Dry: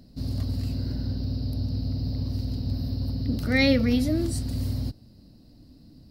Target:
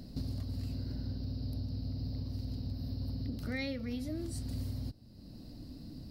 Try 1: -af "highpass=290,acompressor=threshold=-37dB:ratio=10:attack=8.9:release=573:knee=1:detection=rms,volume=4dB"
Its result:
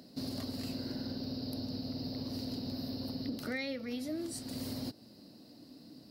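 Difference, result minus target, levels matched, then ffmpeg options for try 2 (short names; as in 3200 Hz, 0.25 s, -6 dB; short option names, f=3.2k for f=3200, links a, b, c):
250 Hz band +2.5 dB
-af "acompressor=threshold=-37dB:ratio=10:attack=8.9:release=573:knee=1:detection=rms,volume=4dB"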